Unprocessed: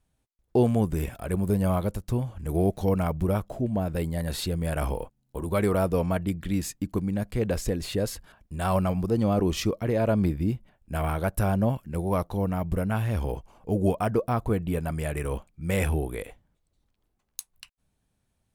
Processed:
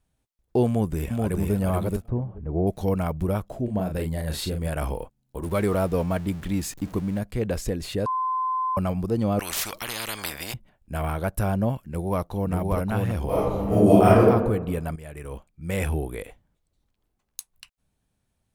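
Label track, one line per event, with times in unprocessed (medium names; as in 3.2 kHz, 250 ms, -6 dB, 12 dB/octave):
0.670000	1.530000	echo throw 430 ms, feedback 15%, level -2.5 dB
2.080000	2.670000	low-pass 1 kHz
3.640000	4.680000	doubling 38 ms -6 dB
5.430000	7.190000	jump at every zero crossing of -39 dBFS
8.060000	8.770000	bleep 1.03 kHz -22.5 dBFS
9.390000	10.540000	spectrum-flattening compressor 10:1
11.780000	12.530000	echo throw 580 ms, feedback 35%, level -1.5 dB
13.260000	14.260000	reverb throw, RT60 1.1 s, DRR -10 dB
14.960000	15.930000	fade in, from -13 dB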